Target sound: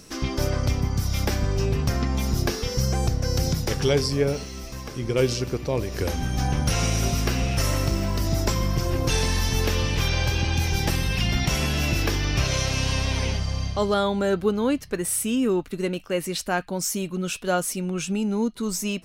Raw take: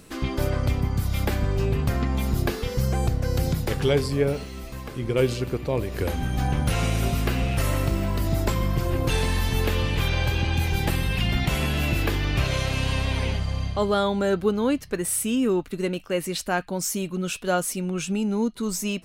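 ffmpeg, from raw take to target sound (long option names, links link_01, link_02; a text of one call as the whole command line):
ffmpeg -i in.wav -af "asetnsamples=nb_out_samples=441:pad=0,asendcmd='13.94 equalizer g 2.5',equalizer=frequency=5600:width=3.4:gain=14.5" out.wav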